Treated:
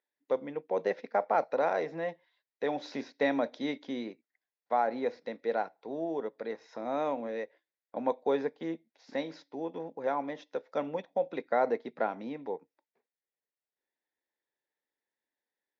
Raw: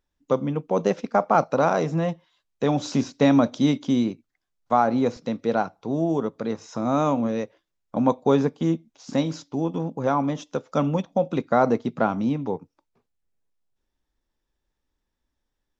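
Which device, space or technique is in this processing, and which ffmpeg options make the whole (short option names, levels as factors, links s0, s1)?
phone earpiece: -af "highpass=430,equalizer=f=470:t=q:w=4:g=3,equalizer=f=1200:t=q:w=4:g=-10,equalizer=f=1900:t=q:w=4:g=8,equalizer=f=3000:t=q:w=4:g=-7,lowpass=f=4300:w=0.5412,lowpass=f=4300:w=1.3066,volume=0.473"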